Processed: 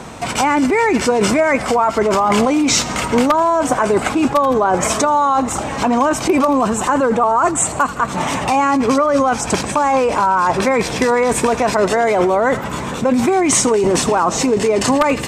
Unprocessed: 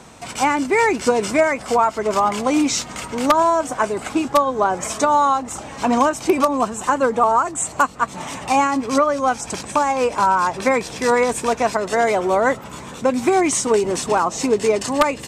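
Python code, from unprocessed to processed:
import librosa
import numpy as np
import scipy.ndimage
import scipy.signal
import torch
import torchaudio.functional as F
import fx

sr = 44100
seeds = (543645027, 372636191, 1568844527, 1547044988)

p1 = fx.high_shelf(x, sr, hz=4200.0, db=-9.0)
p2 = fx.echo_wet_highpass(p1, sr, ms=82, feedback_pct=55, hz=1800.0, wet_db=-17.5)
p3 = fx.over_compress(p2, sr, threshold_db=-23.0, ratio=-0.5)
p4 = p2 + (p3 * librosa.db_to_amplitude(3.0))
y = fx.high_shelf(p4, sr, hz=11000.0, db=6.5)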